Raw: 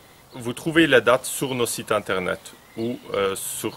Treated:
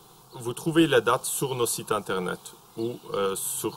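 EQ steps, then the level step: static phaser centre 390 Hz, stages 8; 0.0 dB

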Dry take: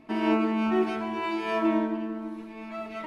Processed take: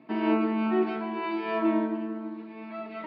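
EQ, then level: Chebyshev band-pass 140–4600 Hz, order 4; treble shelf 3.2 kHz -7.5 dB; 0.0 dB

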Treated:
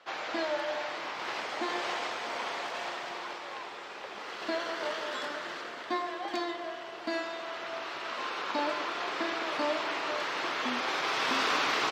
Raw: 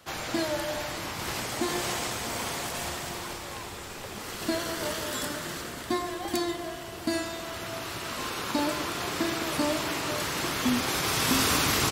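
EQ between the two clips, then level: high-pass 510 Hz 12 dB/octave; distance through air 210 m; +1.5 dB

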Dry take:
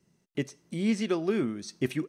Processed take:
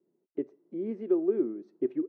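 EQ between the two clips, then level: ladder band-pass 390 Hz, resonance 60%; +6.5 dB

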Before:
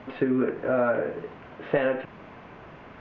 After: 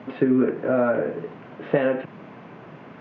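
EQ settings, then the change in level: high-pass 130 Hz 24 dB/octave; bass shelf 390 Hz +8 dB; 0.0 dB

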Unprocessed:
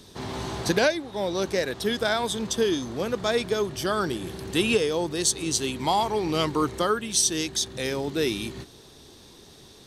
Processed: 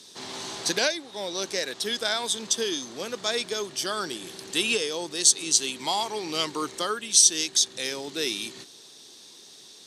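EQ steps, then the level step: band-pass 220–7500 Hz; treble shelf 2.4 kHz +11 dB; treble shelf 5.3 kHz +7.5 dB; -6.5 dB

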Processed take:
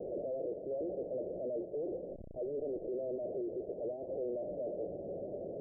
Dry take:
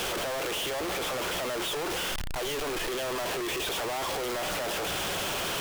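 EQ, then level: steep low-pass 620 Hz 72 dB/octave; distance through air 450 m; tilt EQ +4.5 dB/octave; +3.5 dB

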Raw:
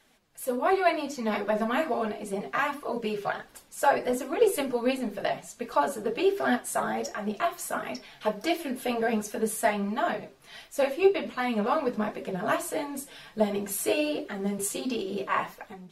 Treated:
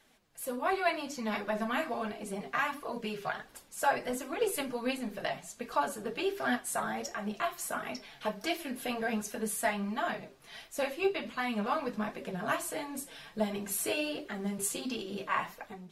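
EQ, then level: dynamic bell 440 Hz, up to -7 dB, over -38 dBFS, Q 0.75; -2.0 dB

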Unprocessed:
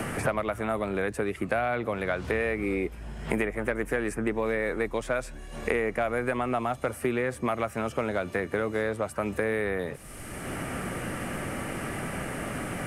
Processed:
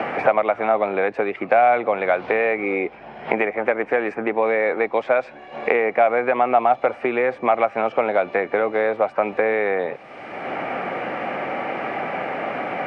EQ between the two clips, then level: cabinet simulation 210–4200 Hz, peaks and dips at 520 Hz +3 dB, 770 Hz +8 dB, 2.3 kHz +8 dB; peaking EQ 760 Hz +8.5 dB 2.4 oct; 0.0 dB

